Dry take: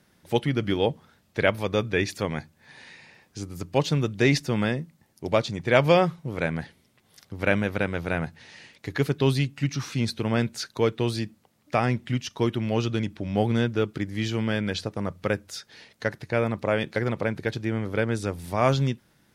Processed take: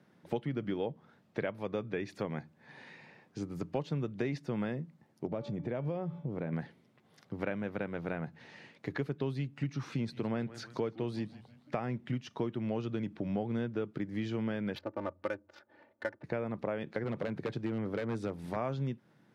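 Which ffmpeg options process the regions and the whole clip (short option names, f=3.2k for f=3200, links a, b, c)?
-filter_complex "[0:a]asettb=1/sr,asplit=3[a][b][c];[a]atrim=end=5.254[d];[b]atrim=start=5.25:end=6.53,asetpts=PTS-STARTPTS,afade=t=in:d=0.004:c=qsin,afade=t=out:st=1.276:d=0.004:c=qsin,tiltshelf=f=810:g=5.5,bandreject=f=287.9:t=h:w=4,bandreject=f=575.8:t=h:w=4,bandreject=f=863.7:t=h:w=4,bandreject=f=1.1516k:t=h:w=4,bandreject=f=1.4395k:t=h:w=4,bandreject=f=1.7274k:t=h:w=4,bandreject=f=2.0153k:t=h:w=4,bandreject=f=2.3032k:t=h:w=4,bandreject=f=2.5911k:t=h:w=4,bandreject=f=2.879k:t=h:w=4,bandreject=f=3.1669k:t=h:w=4,bandreject=f=3.4548k:t=h:w=4,acompressor=threshold=-32dB:ratio=3:attack=3.2:release=140:knee=1:detection=peak[e];[c]atrim=start=6.526[f];[d][e]acrossfade=d=0.004:c1=hsin:c2=qsin[g];[g][f]acrossfade=d=0.004:c1=qsin:c2=hsin,asettb=1/sr,asplit=3[h][i][j];[h]atrim=end=9.944[k];[i]atrim=start=9.94:end=11.89,asetpts=PTS-STARTPTS,afade=t=in:d=0.004:c=qsin,afade=t=out:st=1.946:d=0.004:c=qsin,deesser=0.35,asplit=4[l][m][n][o];[m]adelay=160,afreqshift=-120,volume=-18.5dB[p];[n]adelay=320,afreqshift=-240,volume=-25.8dB[q];[o]adelay=480,afreqshift=-360,volume=-33.2dB[r];[l][p][q][r]amix=inputs=4:normalize=0,atrim=end_sample=85995[s];[j]atrim=start=11.886[t];[k][s]acrossfade=d=0.004:c1=hsin:c2=qsin[u];[u][t]acrossfade=d=0.004:c1=qsin:c2=hsin,asettb=1/sr,asplit=3[v][w][x];[v]atrim=end=14.754[y];[w]atrim=start=14.75:end=16.24,asetpts=PTS-STARTPTS,afade=t=in:d=0.004:c=qsin,afade=t=out:st=1.486:d=0.004:c=qsin,equalizer=f=190:w=1:g=-13.5,adynamicsmooth=sensitivity=5:basefreq=780,aecho=1:1:3.4:0.89,atrim=end_sample=65709[z];[x]atrim=start=16.236[aa];[y][z]acrossfade=d=0.004:c1=hsin:c2=qsin[ab];[ab][aa]acrossfade=d=0.004:c1=qsin:c2=hsin,asettb=1/sr,asplit=3[ac][ad][ae];[ac]atrim=end=17.044[af];[ad]atrim=start=17.04:end=18.56,asetpts=PTS-STARTPTS,afade=t=in:d=0.004:c=qsin,afade=t=out:st=1.516:d=0.004:c=qsin,highpass=f=52:w=0.5412,highpass=f=52:w=1.3066,aeval=exprs='0.112*(abs(mod(val(0)/0.112+3,4)-2)-1)':c=same[ag];[ae]atrim=start=18.556[ah];[af][ag]acrossfade=d=0.004:c1=hsin:c2=qsin[ai];[ai][ah]acrossfade=d=0.004:c1=qsin:c2=hsin,highpass=f=120:w=0.5412,highpass=f=120:w=1.3066,acompressor=threshold=-31dB:ratio=5,lowpass=f=1.2k:p=1"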